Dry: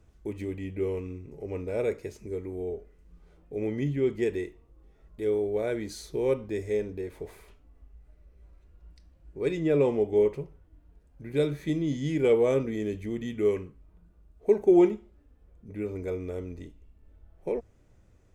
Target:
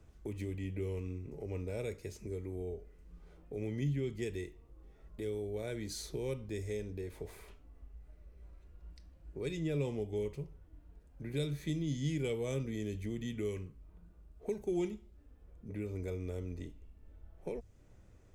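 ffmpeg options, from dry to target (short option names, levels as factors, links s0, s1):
-filter_complex "[0:a]acrossover=split=160|3000[s0][s1][s2];[s1]acompressor=threshold=0.00631:ratio=2.5[s3];[s0][s3][s2]amix=inputs=3:normalize=0"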